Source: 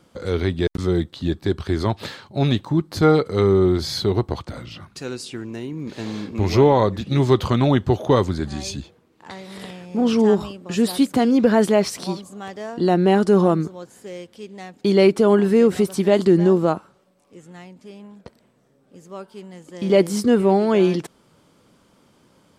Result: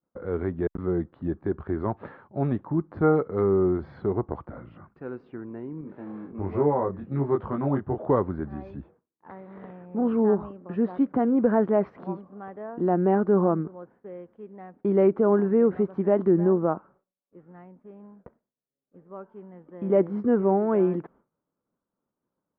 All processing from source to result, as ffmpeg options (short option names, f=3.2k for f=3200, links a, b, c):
-filter_complex "[0:a]asettb=1/sr,asplit=3[a][b][c];[a]atrim=end=5.814[d];[b]atrim=start=5.81:end=7.98,asetpts=PTS-STARTPTS,afade=t=in:d=0.004:c=qsin,afade=t=out:st=2.166:d=0.004:c=qsin,highpass=43,flanger=delay=20:depth=2.5:speed=1.2[e];[c]atrim=start=7.976[f];[d][e]acrossfade=d=0.004:c1=hsin:c2=qsin[g];[g][f]acrossfade=d=0.004:c1=qsin:c2=hsin,lowpass=f=1.5k:w=0.5412,lowpass=f=1.5k:w=1.3066,equalizer=f=96:w=1.3:g=-5.5,agate=range=-33dB:threshold=-44dB:ratio=3:detection=peak,volume=-5dB"